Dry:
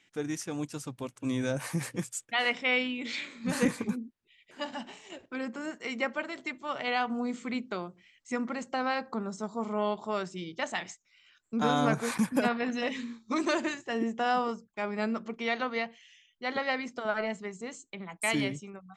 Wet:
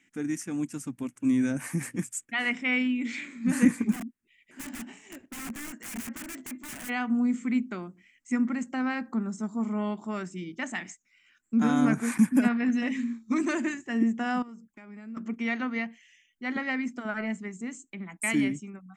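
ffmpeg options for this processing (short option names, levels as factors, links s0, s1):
-filter_complex "[0:a]asplit=3[s0][s1][s2];[s0]afade=t=out:st=3.91:d=0.02[s3];[s1]aeval=exprs='(mod(53.1*val(0)+1,2)-1)/53.1':c=same,afade=t=in:st=3.91:d=0.02,afade=t=out:st=6.88:d=0.02[s4];[s2]afade=t=in:st=6.88:d=0.02[s5];[s3][s4][s5]amix=inputs=3:normalize=0,asettb=1/sr,asplit=3[s6][s7][s8];[s6]atrim=end=14.424[s9];[s7]atrim=start=14.42:end=15.17,asetpts=PTS-STARTPTS,afade=t=in:d=0.004:c=qsin,afade=t=out:st=0.746:d=0.004:c=qsin,acompressor=threshold=0.00355:ratio=3:attack=3.2:release=140:knee=1:detection=peak[s10];[s8]atrim=start=15.166[s11];[s9][s10]acrossfade=d=0.004:c1=hsin:c2=qsin[s12];[s12][s11]acrossfade=d=0.004:c1=qsin:c2=hsin,equalizer=f=125:t=o:w=1:g=-4,equalizer=f=250:t=o:w=1:g=11,equalizer=f=500:t=o:w=1:g=-9,equalizer=f=1000:t=o:w=1:g=-4,equalizer=f=2000:t=o:w=1:g=5,equalizer=f=4000:t=o:w=1:g=-12,equalizer=f=8000:t=o:w=1:g=5"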